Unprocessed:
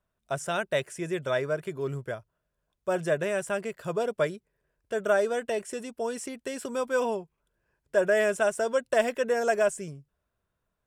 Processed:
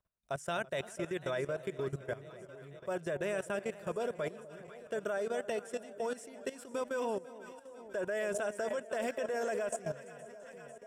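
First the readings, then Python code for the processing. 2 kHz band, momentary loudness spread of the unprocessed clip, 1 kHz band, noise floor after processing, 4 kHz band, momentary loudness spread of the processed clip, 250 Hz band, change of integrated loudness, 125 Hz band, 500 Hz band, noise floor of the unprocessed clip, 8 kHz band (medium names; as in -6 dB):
-9.0 dB, 11 LU, -8.0 dB, -53 dBFS, -8.0 dB, 15 LU, -7.0 dB, -8.5 dB, -7.0 dB, -8.5 dB, -81 dBFS, -8.0 dB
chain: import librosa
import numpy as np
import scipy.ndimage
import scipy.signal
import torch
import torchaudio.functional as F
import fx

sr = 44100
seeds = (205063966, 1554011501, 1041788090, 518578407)

y = fx.echo_alternate(x, sr, ms=248, hz=880.0, feedback_pct=75, wet_db=-11)
y = fx.level_steps(y, sr, step_db=16)
y = fx.echo_warbled(y, sr, ms=335, feedback_pct=47, rate_hz=2.8, cents=75, wet_db=-21)
y = y * 10.0 ** (-2.0 / 20.0)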